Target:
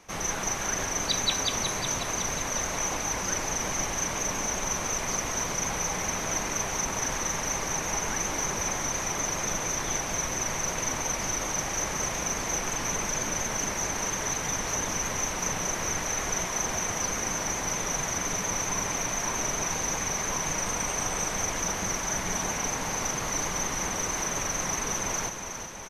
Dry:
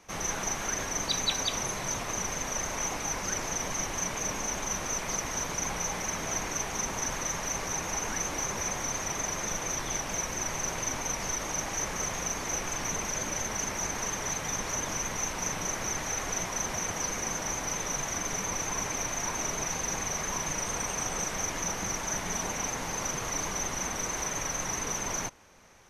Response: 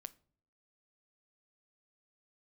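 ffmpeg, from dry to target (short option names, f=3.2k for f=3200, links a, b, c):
-af "areverse,acompressor=mode=upward:threshold=-37dB:ratio=2.5,areverse,aecho=1:1:366|732|1098|1464|1830|2196:0.398|0.215|0.116|0.0627|0.0339|0.0183,volume=2dB"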